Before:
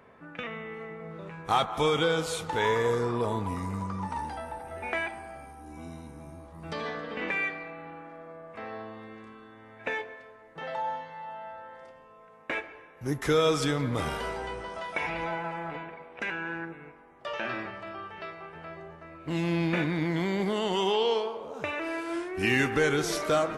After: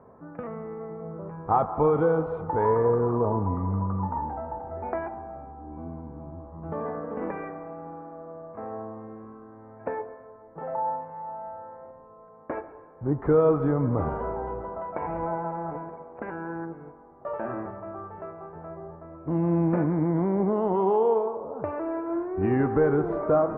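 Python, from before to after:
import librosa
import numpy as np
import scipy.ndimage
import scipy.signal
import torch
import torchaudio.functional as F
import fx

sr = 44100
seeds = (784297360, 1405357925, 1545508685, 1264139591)

y = scipy.signal.sosfilt(scipy.signal.butter(4, 1100.0, 'lowpass', fs=sr, output='sos'), x)
y = fx.peak_eq(y, sr, hz=95.0, db=4.5, octaves=0.22)
y = y * librosa.db_to_amplitude(4.5)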